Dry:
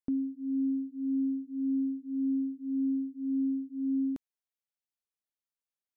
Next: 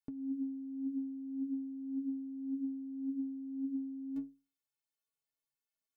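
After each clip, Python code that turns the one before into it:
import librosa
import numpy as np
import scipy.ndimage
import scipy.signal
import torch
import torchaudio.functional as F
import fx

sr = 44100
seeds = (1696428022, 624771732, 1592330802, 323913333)

y = fx.stiff_resonator(x, sr, f0_hz=130.0, decay_s=0.35, stiffness=0.03)
y = fx.over_compress(y, sr, threshold_db=-44.0, ratio=-1.0)
y = y * 10.0 ** (4.5 / 20.0)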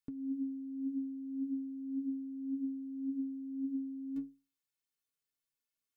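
y = fx.peak_eq(x, sr, hz=720.0, db=-10.0, octaves=0.74)
y = y * 10.0 ** (1.0 / 20.0)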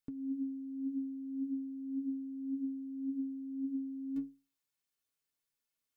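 y = fx.rider(x, sr, range_db=10, speed_s=0.5)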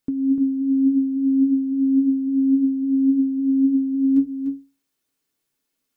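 y = fx.peak_eq(x, sr, hz=290.0, db=9.5, octaves=1.3)
y = y + 10.0 ** (-6.5 / 20.0) * np.pad(y, (int(297 * sr / 1000.0), 0))[:len(y)]
y = y * 10.0 ** (9.0 / 20.0)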